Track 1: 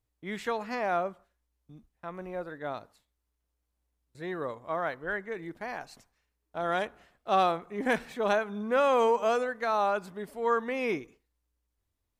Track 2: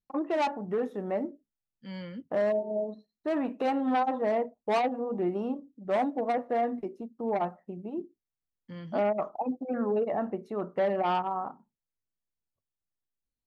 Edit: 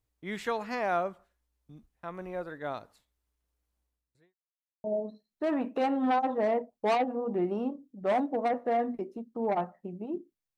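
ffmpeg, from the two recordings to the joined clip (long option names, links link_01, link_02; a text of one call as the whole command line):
ffmpeg -i cue0.wav -i cue1.wav -filter_complex "[0:a]apad=whole_dur=10.57,atrim=end=10.57,asplit=2[link_01][link_02];[link_01]atrim=end=4.35,asetpts=PTS-STARTPTS,afade=type=out:start_time=3.8:duration=0.55:curve=qua[link_03];[link_02]atrim=start=4.35:end=4.84,asetpts=PTS-STARTPTS,volume=0[link_04];[1:a]atrim=start=2.68:end=8.41,asetpts=PTS-STARTPTS,afade=type=in:duration=0.004:curve=hsin[link_05];[link_03][link_04][link_05]concat=n=3:v=0:a=1" out.wav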